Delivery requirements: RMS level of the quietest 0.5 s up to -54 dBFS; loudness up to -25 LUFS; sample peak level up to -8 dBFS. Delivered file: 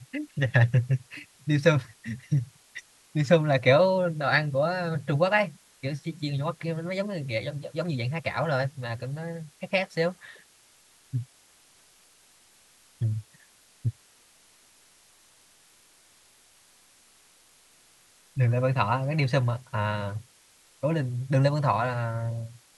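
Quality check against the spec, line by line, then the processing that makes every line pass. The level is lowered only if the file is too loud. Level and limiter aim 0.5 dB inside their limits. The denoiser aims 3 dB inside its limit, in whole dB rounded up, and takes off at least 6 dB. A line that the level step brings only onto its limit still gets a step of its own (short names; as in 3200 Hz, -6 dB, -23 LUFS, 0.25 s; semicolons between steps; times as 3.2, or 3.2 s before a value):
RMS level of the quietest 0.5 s -59 dBFS: OK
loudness -27.0 LUFS: OK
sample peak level -6.5 dBFS: fail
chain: limiter -8.5 dBFS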